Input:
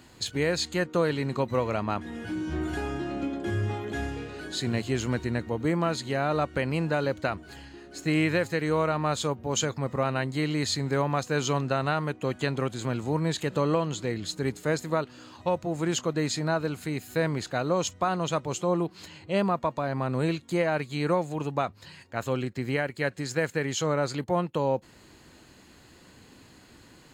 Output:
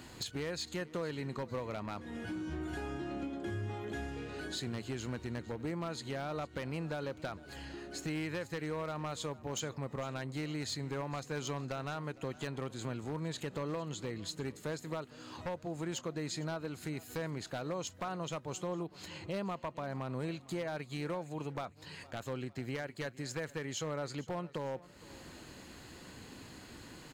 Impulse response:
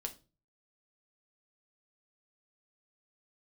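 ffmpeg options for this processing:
-filter_complex "[0:a]acompressor=threshold=-44dB:ratio=2.5,aeval=exprs='0.0251*(abs(mod(val(0)/0.0251+3,4)-2)-1)':c=same,asplit=2[a][b];[b]aecho=0:1:457|914|1371:0.1|0.042|0.0176[c];[a][c]amix=inputs=2:normalize=0,volume=2dB"

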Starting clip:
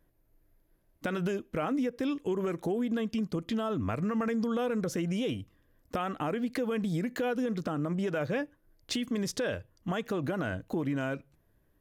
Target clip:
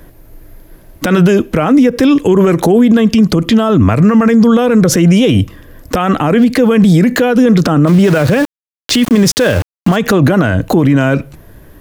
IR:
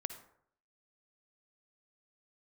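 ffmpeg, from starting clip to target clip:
-filter_complex "[0:a]acrossover=split=200[a][b];[b]acompressor=threshold=-34dB:ratio=5[c];[a][c]amix=inputs=2:normalize=0,asplit=3[d][e][f];[d]afade=t=out:st=7.86:d=0.02[g];[e]aeval=exprs='val(0)*gte(abs(val(0)),0.00531)':c=same,afade=t=in:st=7.86:d=0.02,afade=t=out:st=9.95:d=0.02[h];[f]afade=t=in:st=9.95:d=0.02[i];[g][h][i]amix=inputs=3:normalize=0,alimiter=level_in=32dB:limit=-1dB:release=50:level=0:latency=1,volume=-1dB"

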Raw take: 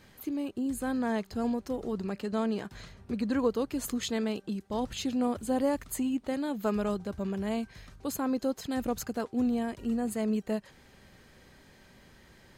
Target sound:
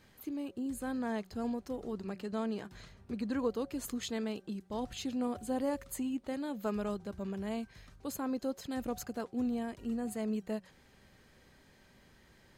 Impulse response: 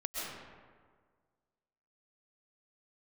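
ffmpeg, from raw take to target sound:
-af "bandreject=f=183:t=h:w=4,bandreject=f=366:t=h:w=4,bandreject=f=549:t=h:w=4,bandreject=f=732:t=h:w=4,volume=-5.5dB"

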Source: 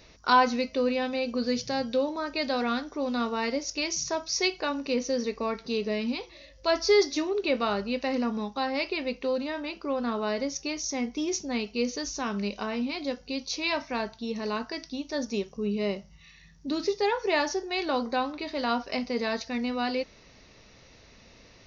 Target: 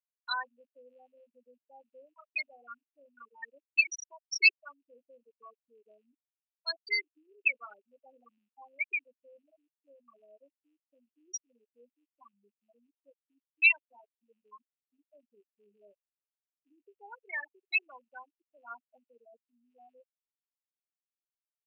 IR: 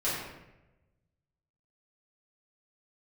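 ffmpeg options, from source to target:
-af "acrusher=bits=8:dc=4:mix=0:aa=0.000001,afftfilt=real='re*gte(hypot(re,im),0.2)':imag='im*gte(hypot(re,im),0.2)':win_size=1024:overlap=0.75,highpass=f=2.7k:t=q:w=7"

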